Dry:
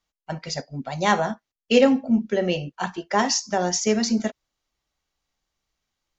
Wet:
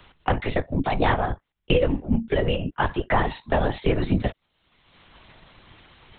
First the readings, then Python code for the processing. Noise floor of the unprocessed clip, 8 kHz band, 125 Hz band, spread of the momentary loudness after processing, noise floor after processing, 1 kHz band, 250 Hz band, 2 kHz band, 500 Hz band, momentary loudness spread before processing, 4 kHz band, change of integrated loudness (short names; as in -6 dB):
under -85 dBFS, n/a, +7.0 dB, 4 LU, -77 dBFS, 0.0 dB, -3.5 dB, 0.0 dB, -1.5 dB, 13 LU, -5.5 dB, -2.0 dB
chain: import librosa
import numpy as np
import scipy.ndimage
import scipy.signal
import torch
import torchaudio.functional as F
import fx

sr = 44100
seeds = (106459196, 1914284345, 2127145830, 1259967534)

y = fx.lpc_vocoder(x, sr, seeds[0], excitation='whisper', order=10)
y = fx.band_squash(y, sr, depth_pct=100)